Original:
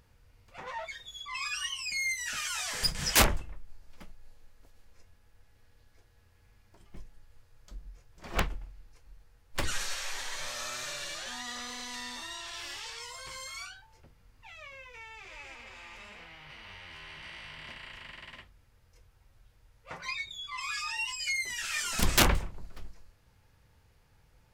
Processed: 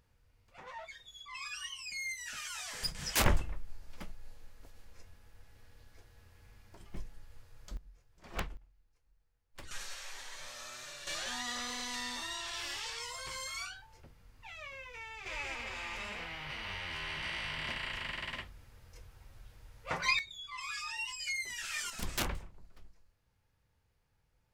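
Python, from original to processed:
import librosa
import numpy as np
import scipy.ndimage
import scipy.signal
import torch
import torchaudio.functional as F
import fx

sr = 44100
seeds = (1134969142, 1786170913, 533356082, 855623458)

y = fx.gain(x, sr, db=fx.steps((0.0, -7.5), (3.26, 4.0), (7.77, -8.5), (8.57, -18.0), (9.71, -9.0), (11.07, 1.0), (15.26, 7.0), (20.19, -5.0), (21.9, -12.0)))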